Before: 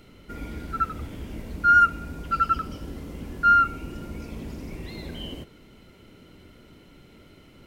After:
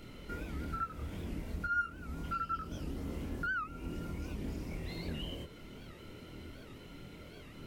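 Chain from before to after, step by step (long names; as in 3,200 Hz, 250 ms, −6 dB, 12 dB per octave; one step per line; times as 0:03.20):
downward compressor 3 to 1, threshold −40 dBFS, peak gain reduction 19 dB
multi-voice chorus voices 2, 0.78 Hz, delay 25 ms, depth 1.1 ms
wow of a warped record 78 rpm, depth 160 cents
level +4 dB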